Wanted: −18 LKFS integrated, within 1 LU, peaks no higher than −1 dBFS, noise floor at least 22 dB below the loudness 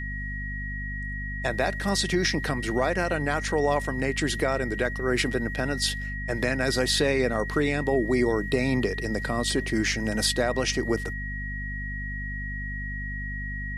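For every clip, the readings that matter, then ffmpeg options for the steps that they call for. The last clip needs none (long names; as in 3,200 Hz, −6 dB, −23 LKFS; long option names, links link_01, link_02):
mains hum 50 Hz; hum harmonics up to 250 Hz; level of the hum −31 dBFS; interfering tone 1,900 Hz; level of the tone −34 dBFS; integrated loudness −27.0 LKFS; sample peak −11.0 dBFS; target loudness −18.0 LKFS
→ -af "bandreject=frequency=50:width_type=h:width=4,bandreject=frequency=100:width_type=h:width=4,bandreject=frequency=150:width_type=h:width=4,bandreject=frequency=200:width_type=h:width=4,bandreject=frequency=250:width_type=h:width=4"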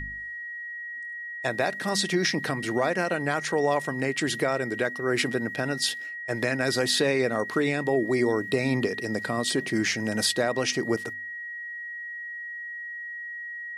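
mains hum none found; interfering tone 1,900 Hz; level of the tone −34 dBFS
→ -af "bandreject=frequency=1900:width=30"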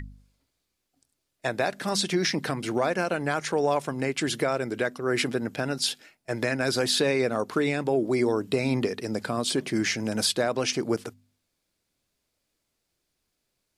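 interfering tone none found; integrated loudness −27.0 LKFS; sample peak −11.0 dBFS; target loudness −18.0 LKFS
→ -af "volume=9dB"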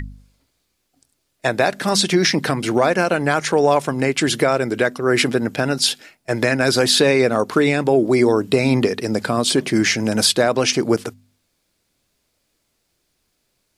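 integrated loudness −18.0 LKFS; sample peak −2.0 dBFS; background noise floor −70 dBFS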